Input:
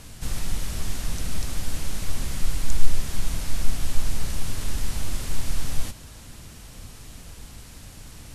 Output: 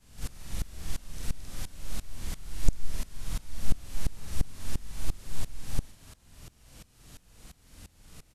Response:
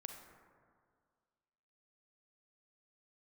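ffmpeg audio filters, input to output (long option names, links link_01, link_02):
-filter_complex "[0:a]afftfilt=real='re':imag='-im':win_size=4096:overlap=0.75,asplit=2[link_01][link_02];[link_02]asetrate=22050,aresample=44100,atempo=2,volume=-17dB[link_03];[link_01][link_03]amix=inputs=2:normalize=0,aeval=exprs='val(0)*pow(10,-21*if(lt(mod(-2.9*n/s,1),2*abs(-2.9)/1000),1-mod(-2.9*n/s,1)/(2*abs(-2.9)/1000),(mod(-2.9*n/s,1)-2*abs(-2.9)/1000)/(1-2*abs(-2.9)/1000))/20)':channel_layout=same,volume=1.5dB"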